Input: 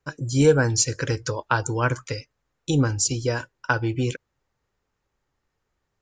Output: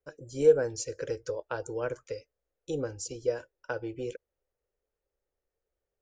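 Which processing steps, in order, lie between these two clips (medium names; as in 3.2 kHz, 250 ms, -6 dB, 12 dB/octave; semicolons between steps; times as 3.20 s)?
graphic EQ 125/250/500/1000/2000/4000/8000 Hz -11/-8/+11/-10/-4/-7/-6 dB; trim -8.5 dB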